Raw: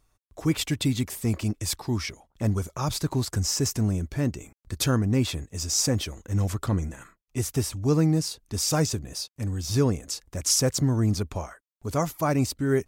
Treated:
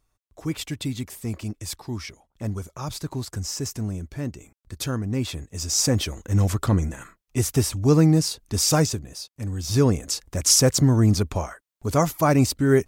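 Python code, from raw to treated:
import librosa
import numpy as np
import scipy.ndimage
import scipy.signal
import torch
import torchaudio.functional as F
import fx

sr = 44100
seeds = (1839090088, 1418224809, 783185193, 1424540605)

y = fx.gain(x, sr, db=fx.line((4.99, -4.0), (6.11, 5.0), (8.74, 5.0), (9.17, -3.5), (9.99, 5.5)))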